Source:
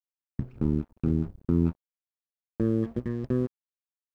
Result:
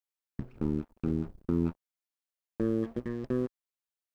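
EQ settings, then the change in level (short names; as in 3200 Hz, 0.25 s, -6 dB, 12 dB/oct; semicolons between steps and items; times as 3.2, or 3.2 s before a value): bell 96 Hz -8.5 dB 2.5 oct; 0.0 dB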